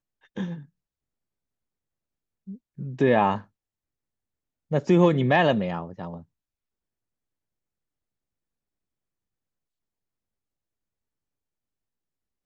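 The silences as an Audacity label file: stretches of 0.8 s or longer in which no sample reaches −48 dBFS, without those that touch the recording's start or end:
0.650000	2.470000	silence
3.440000	4.710000	silence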